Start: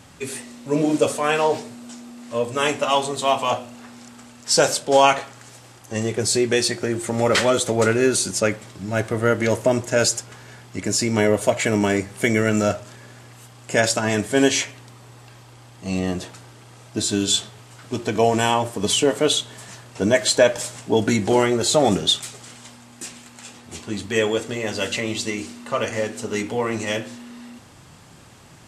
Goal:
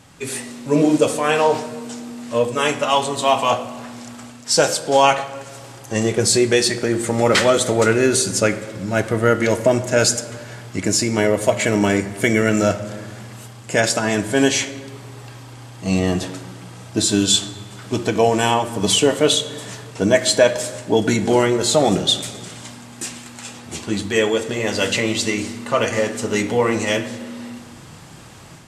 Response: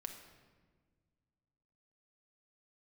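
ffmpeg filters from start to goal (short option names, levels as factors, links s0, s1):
-filter_complex "[0:a]dynaudnorm=f=170:g=3:m=2.24,asplit=2[s0][s1];[1:a]atrim=start_sample=2205,asetrate=36162,aresample=44100[s2];[s1][s2]afir=irnorm=-1:irlink=0,volume=0.944[s3];[s0][s3]amix=inputs=2:normalize=0,volume=0.531"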